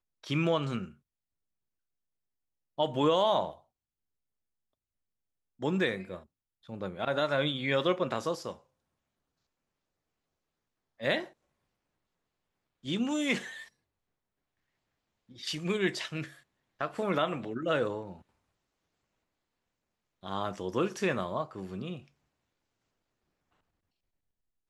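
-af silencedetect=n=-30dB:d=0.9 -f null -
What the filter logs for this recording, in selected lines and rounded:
silence_start: 0.82
silence_end: 2.79 | silence_duration: 1.97
silence_start: 3.49
silence_end: 5.63 | silence_duration: 2.14
silence_start: 8.51
silence_end: 11.03 | silence_duration: 2.52
silence_start: 11.20
silence_end: 12.88 | silence_duration: 1.68
silence_start: 13.38
silence_end: 15.47 | silence_duration: 2.09
silence_start: 18.01
silence_end: 20.26 | silence_duration: 2.26
silence_start: 21.93
silence_end: 24.69 | silence_duration: 2.76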